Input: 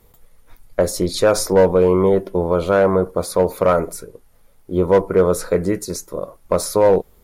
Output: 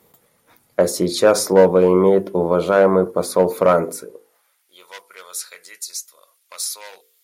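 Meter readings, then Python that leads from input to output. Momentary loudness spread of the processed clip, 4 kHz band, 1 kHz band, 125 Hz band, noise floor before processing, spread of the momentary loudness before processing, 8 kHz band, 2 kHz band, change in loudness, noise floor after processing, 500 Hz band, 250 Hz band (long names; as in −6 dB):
18 LU, +1.0 dB, −0.5 dB, −3.5 dB, −53 dBFS, 13 LU, +1.0 dB, 0.0 dB, +1.0 dB, −63 dBFS, −1.0 dB, −1.0 dB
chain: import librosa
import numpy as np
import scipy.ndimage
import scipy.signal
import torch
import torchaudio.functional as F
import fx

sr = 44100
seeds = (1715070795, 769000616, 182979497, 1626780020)

y = fx.filter_sweep_highpass(x, sr, from_hz=180.0, to_hz=3100.0, start_s=3.95, end_s=4.75, q=1.0)
y = fx.hum_notches(y, sr, base_hz=50, count=10)
y = y * 10.0 ** (1.0 / 20.0)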